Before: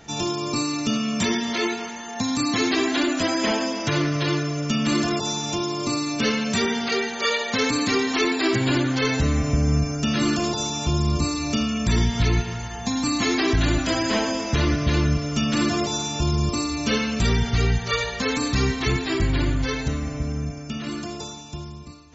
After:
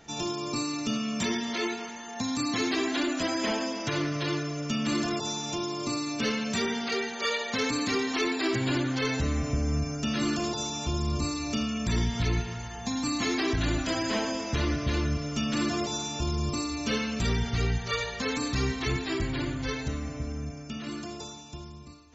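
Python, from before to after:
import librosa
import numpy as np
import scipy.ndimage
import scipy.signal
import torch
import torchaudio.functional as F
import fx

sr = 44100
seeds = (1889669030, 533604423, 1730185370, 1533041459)

p1 = fx.hum_notches(x, sr, base_hz=50, count=4)
p2 = np.clip(p1, -10.0 ** (-18.0 / 20.0), 10.0 ** (-18.0 / 20.0))
p3 = p1 + F.gain(torch.from_numpy(p2), -11.5).numpy()
y = F.gain(torch.from_numpy(p3), -8.0).numpy()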